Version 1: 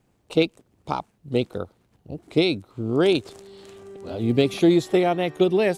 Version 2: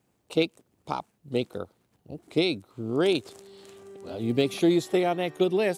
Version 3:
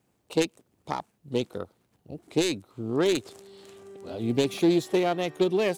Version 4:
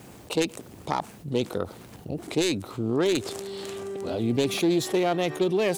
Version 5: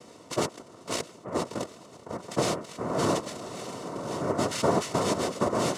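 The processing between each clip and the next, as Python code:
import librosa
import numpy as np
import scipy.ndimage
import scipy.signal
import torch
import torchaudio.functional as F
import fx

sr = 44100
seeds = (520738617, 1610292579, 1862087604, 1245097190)

y1 = fx.highpass(x, sr, hz=120.0, slope=6)
y1 = fx.high_shelf(y1, sr, hz=7700.0, db=6.5)
y1 = y1 * 10.0 ** (-4.0 / 20.0)
y2 = fx.self_delay(y1, sr, depth_ms=0.15)
y3 = fx.env_flatten(y2, sr, amount_pct=50)
y3 = y3 * 10.0 ** (-2.0 / 20.0)
y4 = fx.spec_quant(y3, sr, step_db=15)
y4 = fx.noise_vocoder(y4, sr, seeds[0], bands=2)
y4 = fx.notch_comb(y4, sr, f0_hz=820.0)
y4 = y4 * 10.0 ** (-1.5 / 20.0)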